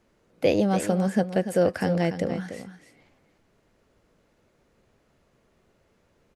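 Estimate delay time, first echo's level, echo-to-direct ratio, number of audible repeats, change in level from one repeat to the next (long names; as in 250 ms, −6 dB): 291 ms, −10.5 dB, −10.5 dB, 1, repeats not evenly spaced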